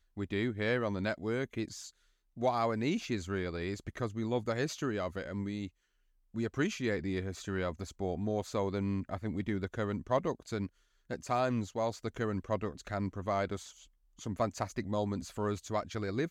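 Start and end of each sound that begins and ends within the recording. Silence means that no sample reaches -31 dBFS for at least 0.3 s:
2.42–5.66 s
6.36–10.66 s
11.11–13.56 s

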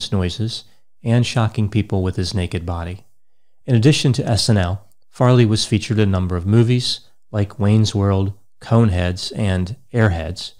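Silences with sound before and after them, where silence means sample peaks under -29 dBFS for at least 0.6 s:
2.96–3.68 s

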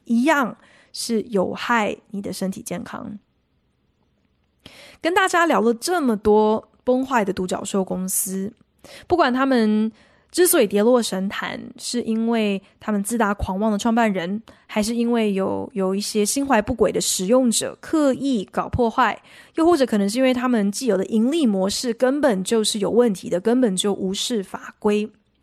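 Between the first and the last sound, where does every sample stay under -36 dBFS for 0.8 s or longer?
3.17–4.66 s

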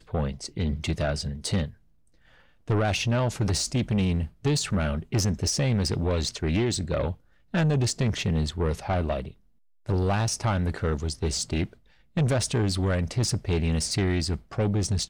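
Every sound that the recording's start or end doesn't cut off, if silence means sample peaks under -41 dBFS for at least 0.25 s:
2.68–7.14 s
7.54–9.31 s
9.86–11.73 s

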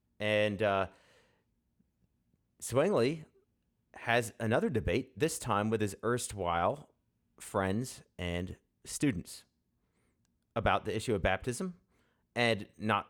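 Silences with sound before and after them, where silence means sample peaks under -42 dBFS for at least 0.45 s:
0.87–2.62 s
3.23–3.94 s
6.82–7.41 s
9.38–10.56 s
11.71–12.36 s

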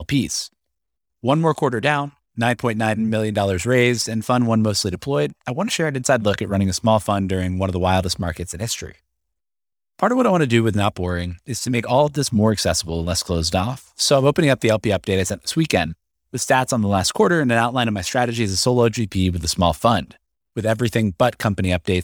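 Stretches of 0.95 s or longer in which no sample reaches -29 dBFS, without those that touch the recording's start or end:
8.90–9.99 s

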